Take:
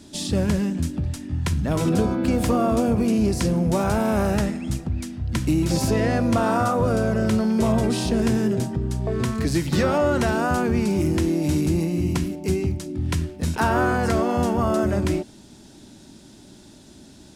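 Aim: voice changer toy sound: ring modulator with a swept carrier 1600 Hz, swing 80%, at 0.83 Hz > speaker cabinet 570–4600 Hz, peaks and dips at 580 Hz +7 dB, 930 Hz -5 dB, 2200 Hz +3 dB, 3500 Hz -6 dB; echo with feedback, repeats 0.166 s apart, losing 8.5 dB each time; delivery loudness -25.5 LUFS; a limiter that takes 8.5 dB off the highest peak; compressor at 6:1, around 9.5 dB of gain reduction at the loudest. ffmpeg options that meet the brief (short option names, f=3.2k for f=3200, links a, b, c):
-af "acompressor=threshold=-27dB:ratio=6,alimiter=limit=-23.5dB:level=0:latency=1,aecho=1:1:166|332|498|664:0.376|0.143|0.0543|0.0206,aeval=exprs='val(0)*sin(2*PI*1600*n/s+1600*0.8/0.83*sin(2*PI*0.83*n/s))':c=same,highpass=570,equalizer=f=580:t=q:w=4:g=7,equalizer=f=930:t=q:w=4:g=-5,equalizer=f=2.2k:t=q:w=4:g=3,equalizer=f=3.5k:t=q:w=4:g=-6,lowpass=f=4.6k:w=0.5412,lowpass=f=4.6k:w=1.3066,volume=7.5dB"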